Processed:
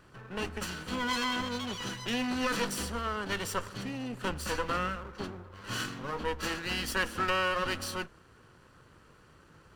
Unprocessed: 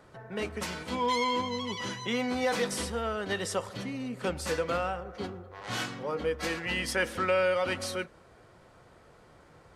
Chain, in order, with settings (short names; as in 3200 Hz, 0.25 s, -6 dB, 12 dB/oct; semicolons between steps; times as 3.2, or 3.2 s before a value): minimum comb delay 0.69 ms